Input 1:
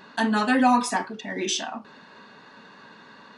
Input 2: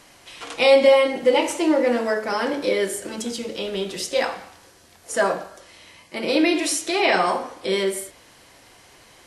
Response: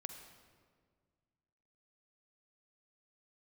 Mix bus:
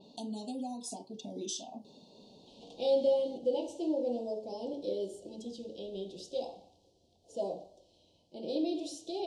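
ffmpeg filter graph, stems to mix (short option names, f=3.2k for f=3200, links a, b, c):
-filter_complex "[0:a]acompressor=threshold=-33dB:ratio=4,volume=-4.5dB[a];[1:a]lowpass=3.4k,adelay=2200,volume=-13dB[b];[a][b]amix=inputs=2:normalize=0,asuperstop=centerf=1600:order=8:qfactor=0.61,adynamicequalizer=threshold=0.00141:dfrequency=5600:dqfactor=0.7:tfrequency=5600:tqfactor=0.7:attack=5:release=100:ratio=0.375:range=3:mode=boostabove:tftype=highshelf"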